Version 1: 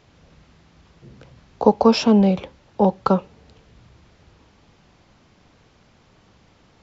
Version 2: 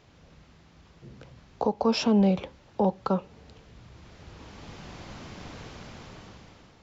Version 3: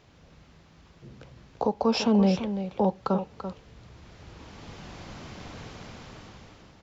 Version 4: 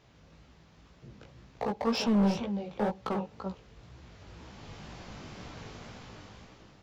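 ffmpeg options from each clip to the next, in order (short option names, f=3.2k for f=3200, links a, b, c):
-af "dynaudnorm=f=430:g=5:m=15.5dB,alimiter=limit=-11.5dB:level=0:latency=1:release=257,volume=-2.5dB"
-af "aecho=1:1:338:0.316"
-af "asoftclip=type=hard:threshold=-21dB,flanger=delay=15.5:depth=4.9:speed=2"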